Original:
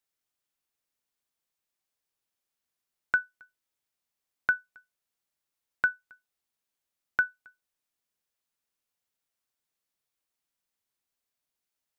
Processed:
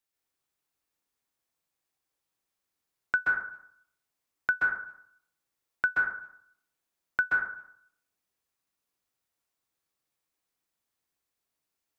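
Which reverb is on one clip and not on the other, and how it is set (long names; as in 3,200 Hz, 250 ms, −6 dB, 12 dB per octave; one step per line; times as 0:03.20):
dense smooth reverb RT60 0.65 s, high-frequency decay 0.35×, pre-delay 120 ms, DRR −2.5 dB
level −1.5 dB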